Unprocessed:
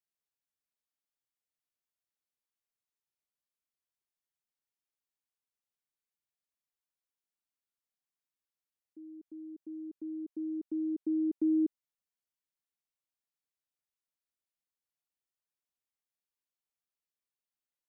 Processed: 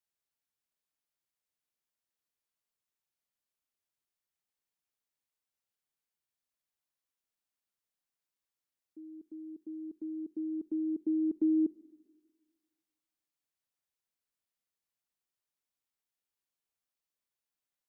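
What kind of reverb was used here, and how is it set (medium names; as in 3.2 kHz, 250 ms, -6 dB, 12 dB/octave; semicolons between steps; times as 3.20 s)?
Schroeder reverb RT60 1.6 s, combs from 33 ms, DRR 17.5 dB; trim +1 dB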